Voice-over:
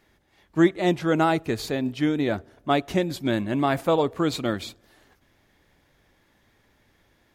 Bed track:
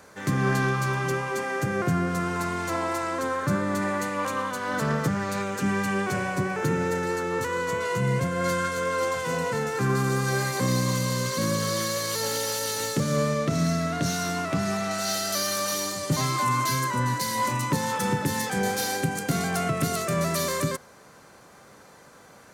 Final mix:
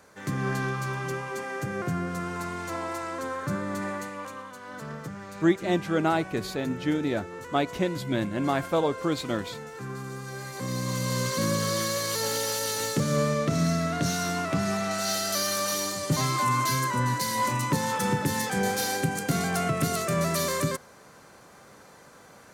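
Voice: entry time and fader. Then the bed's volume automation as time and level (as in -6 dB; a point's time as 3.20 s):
4.85 s, -3.5 dB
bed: 3.89 s -5 dB
4.44 s -12.5 dB
10.35 s -12.5 dB
11.18 s -0.5 dB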